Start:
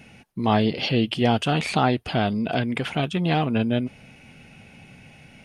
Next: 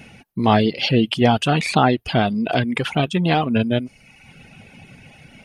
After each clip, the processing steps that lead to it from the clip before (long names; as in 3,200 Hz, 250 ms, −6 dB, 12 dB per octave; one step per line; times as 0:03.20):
reverb reduction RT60 0.9 s
level +5.5 dB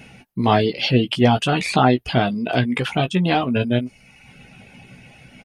double-tracking delay 16 ms −7 dB
level −1 dB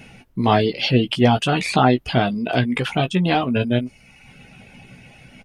background noise brown −59 dBFS